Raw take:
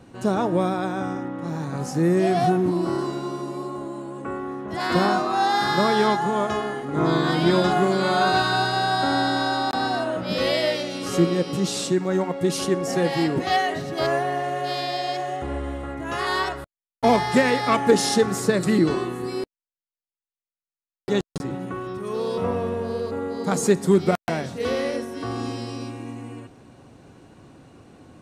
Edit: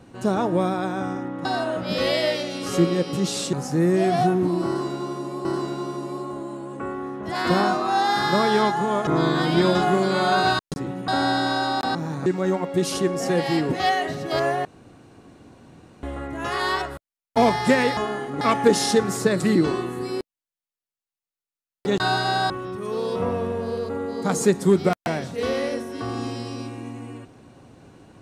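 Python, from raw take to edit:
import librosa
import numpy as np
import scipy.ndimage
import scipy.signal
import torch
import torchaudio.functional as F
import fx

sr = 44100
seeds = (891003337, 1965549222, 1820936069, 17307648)

y = fx.edit(x, sr, fx.swap(start_s=1.45, length_s=0.31, other_s=9.85, other_length_s=2.08),
    fx.repeat(start_s=2.9, length_s=0.78, count=2),
    fx.move(start_s=6.52, length_s=0.44, to_s=17.64),
    fx.swap(start_s=8.48, length_s=0.5, other_s=21.23, other_length_s=0.49),
    fx.room_tone_fill(start_s=14.32, length_s=1.38), tone=tone)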